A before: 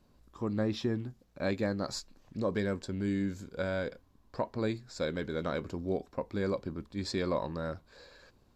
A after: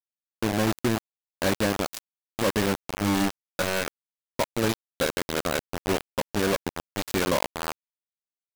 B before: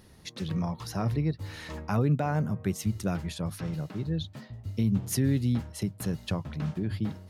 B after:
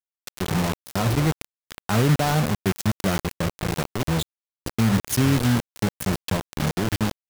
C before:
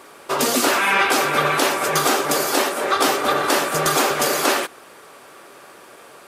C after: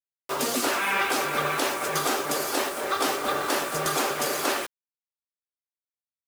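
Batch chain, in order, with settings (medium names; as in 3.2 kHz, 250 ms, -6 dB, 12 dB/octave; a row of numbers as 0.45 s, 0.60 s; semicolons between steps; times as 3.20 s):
bit crusher 5-bit; peak normalisation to -12 dBFS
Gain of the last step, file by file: +5.5 dB, +5.5 dB, -7.5 dB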